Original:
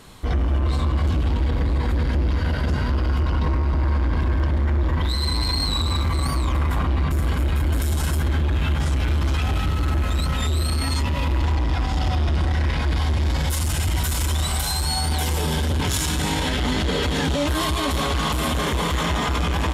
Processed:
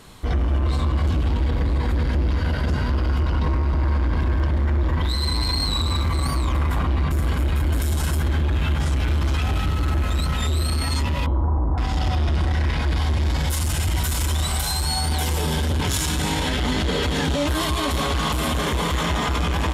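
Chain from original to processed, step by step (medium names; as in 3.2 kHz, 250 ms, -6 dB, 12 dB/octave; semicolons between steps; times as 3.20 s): 11.26–11.78 s: steep low-pass 1.2 kHz 36 dB/octave; de-hum 267.7 Hz, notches 15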